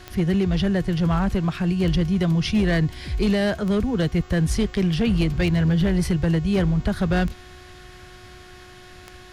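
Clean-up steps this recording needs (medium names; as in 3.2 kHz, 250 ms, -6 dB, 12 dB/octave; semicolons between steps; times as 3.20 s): clip repair -14.5 dBFS; de-click; de-hum 364.3 Hz, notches 21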